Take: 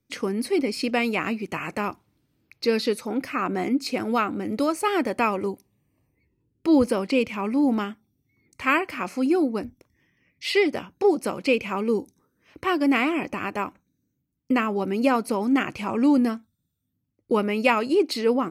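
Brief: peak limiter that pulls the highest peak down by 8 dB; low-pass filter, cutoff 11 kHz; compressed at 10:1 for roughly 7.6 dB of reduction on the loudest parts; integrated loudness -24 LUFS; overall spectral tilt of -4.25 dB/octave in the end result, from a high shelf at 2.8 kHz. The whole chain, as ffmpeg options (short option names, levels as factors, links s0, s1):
-af "lowpass=11000,highshelf=f=2800:g=-5.5,acompressor=threshold=0.0794:ratio=10,volume=2,alimiter=limit=0.2:level=0:latency=1"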